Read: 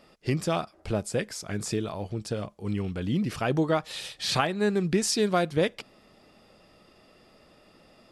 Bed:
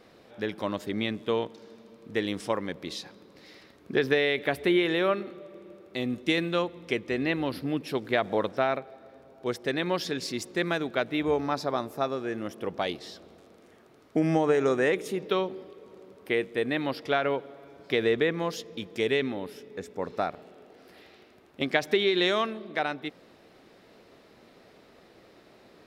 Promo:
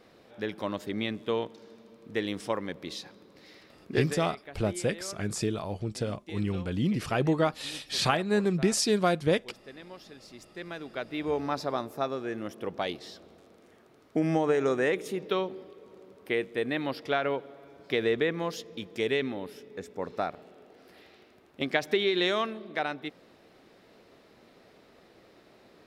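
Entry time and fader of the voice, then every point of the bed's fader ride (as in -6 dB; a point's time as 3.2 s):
3.70 s, -0.5 dB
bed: 3.95 s -2 dB
4.27 s -18.5 dB
10.18 s -18.5 dB
11.44 s -2 dB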